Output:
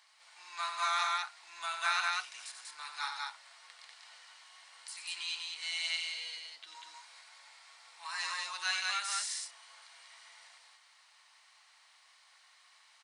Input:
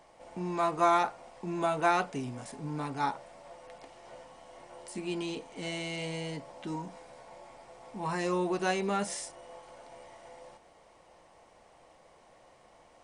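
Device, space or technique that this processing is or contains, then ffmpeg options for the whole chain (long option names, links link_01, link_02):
headphones lying on a table: -filter_complex "[0:a]highpass=frequency=1300:width=0.5412,highpass=frequency=1300:width=1.3066,equalizer=frequency=4200:width_type=o:width=0.48:gain=9,asettb=1/sr,asplit=3[link_01][link_02][link_03];[link_01]atrim=end=5.934[link_04];[link_02]atrim=start=5.93:end=6.75,asetpts=PTS-STARTPTS,afade=type=in:duration=0.004:curve=qsin,afade=type=out:start_time=0.816:duration=0.004:curve=qsin,equalizer=frequency=125:width_type=o:width=1:gain=6,equalizer=frequency=250:width_type=o:width=1:gain=12,equalizer=frequency=1000:width_type=o:width=1:gain=-6,equalizer=frequency=2000:width_type=o:width=1:gain=-4,equalizer=frequency=8000:width_type=o:width=1:gain=-7[link_05];[link_03]atrim=start=6.746[link_06];[link_04][link_05]acrossfade=duration=0.004:curve1=hsin:curve2=qsin[link_07];[link_07][link_06]acrossfade=duration=0.004:curve1=qsin:curve2=hsin,aecho=1:1:90.38|192.4:0.447|0.794"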